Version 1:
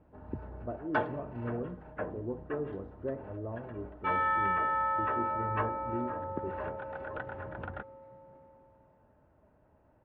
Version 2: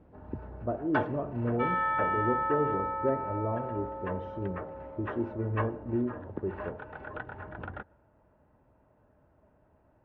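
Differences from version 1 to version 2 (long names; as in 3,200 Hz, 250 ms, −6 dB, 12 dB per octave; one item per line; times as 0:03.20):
speech +4.5 dB
second sound: entry −2.45 s
reverb: on, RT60 0.85 s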